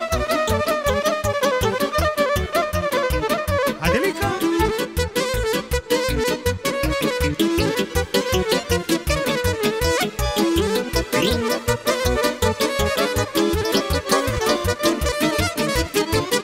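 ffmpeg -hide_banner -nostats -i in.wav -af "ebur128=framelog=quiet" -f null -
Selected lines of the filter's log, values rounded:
Integrated loudness:
  I:         -20.5 LUFS
  Threshold: -30.5 LUFS
Loudness range:
  LRA:         1.1 LU
  Threshold: -40.5 LUFS
  LRA low:   -21.2 LUFS
  LRA high:  -20.1 LUFS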